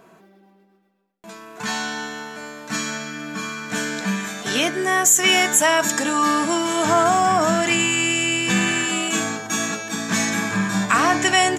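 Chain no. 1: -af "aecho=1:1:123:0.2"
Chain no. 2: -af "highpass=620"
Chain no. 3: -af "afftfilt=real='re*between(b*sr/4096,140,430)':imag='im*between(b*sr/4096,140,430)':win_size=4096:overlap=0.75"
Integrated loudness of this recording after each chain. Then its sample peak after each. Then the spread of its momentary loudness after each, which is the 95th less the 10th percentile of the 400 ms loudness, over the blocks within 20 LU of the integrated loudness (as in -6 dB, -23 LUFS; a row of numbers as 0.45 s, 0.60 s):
-19.0 LUFS, -20.5 LUFS, -28.0 LUFS; -3.0 dBFS, -3.0 dBFS, -14.0 dBFS; 14 LU, 15 LU, 11 LU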